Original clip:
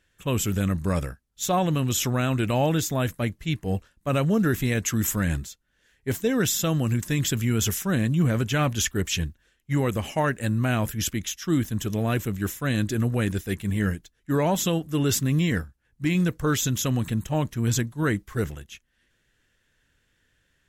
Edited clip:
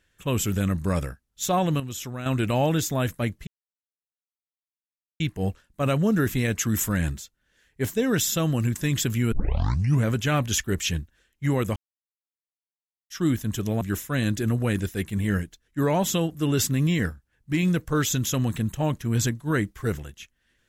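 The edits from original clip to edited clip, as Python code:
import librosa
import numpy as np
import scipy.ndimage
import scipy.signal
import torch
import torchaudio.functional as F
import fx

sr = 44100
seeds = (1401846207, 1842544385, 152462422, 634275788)

y = fx.edit(x, sr, fx.clip_gain(start_s=1.8, length_s=0.46, db=-9.5),
    fx.insert_silence(at_s=3.47, length_s=1.73),
    fx.tape_start(start_s=7.59, length_s=0.72),
    fx.silence(start_s=10.03, length_s=1.34),
    fx.cut(start_s=12.08, length_s=0.25), tone=tone)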